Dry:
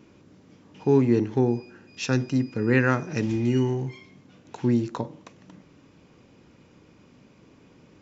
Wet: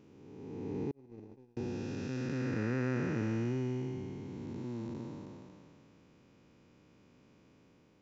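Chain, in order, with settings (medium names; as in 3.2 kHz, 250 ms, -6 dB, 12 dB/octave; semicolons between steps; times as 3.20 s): spectral blur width 791 ms; 0.91–1.57 s: gate -22 dBFS, range -44 dB; trim -7 dB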